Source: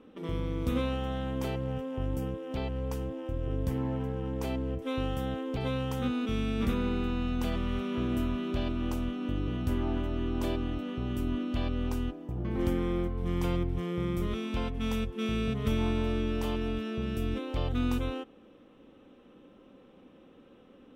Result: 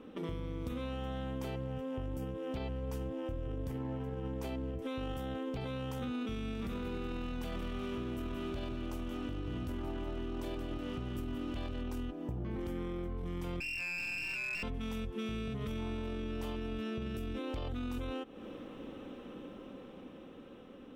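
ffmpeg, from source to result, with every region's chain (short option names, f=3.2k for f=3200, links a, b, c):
-filter_complex "[0:a]asettb=1/sr,asplit=3[a][b][c];[a]atrim=end=6.544[d];[b]atrim=start=6.54:end=11.82,asetpts=PTS-STARTPTS,afade=t=in:d=0.004:c=qsin,afade=t=out:st=5.276:d=0.004:c=qsin,aeval=exprs='sgn(val(0))*max(abs(val(0))-0.00335,0)':c=same,aecho=1:1:176:0.282,atrim=end_sample=232848[e];[c]atrim=start=11.816[f];[d][e]acrossfade=d=0.004:c1=hsin:c2=qsin[g];[g][f]acrossfade=d=0.004:c1=qsin:c2=hsin,asettb=1/sr,asplit=3[h][i][j];[h]atrim=end=13.604[k];[i]atrim=start=13.6:end=14.63,asetpts=PTS-STARTPTS,afade=t=in:d=0.004:c=qsin,afade=t=out:st=1.026:d=0.004:c=qsin,lowpass=f=2.4k:t=q:w=0.5098,lowpass=f=2.4k:t=q:w=0.6013,lowpass=f=2.4k:t=q:w=0.9,lowpass=f=2.4k:t=q:w=2.563,afreqshift=-2800,aeval=exprs='clip(val(0),-1,0.0211)':c=same[l];[j]atrim=start=14.626[m];[k][l]acrossfade=d=0.004:c1=hsin:c2=qsin[n];[n][m]acrossfade=d=0.004:c1=qsin:c2=hsin,dynaudnorm=f=450:g=9:m=7dB,alimiter=limit=-21.5dB:level=0:latency=1:release=18,acompressor=threshold=-40dB:ratio=6,volume=3.5dB"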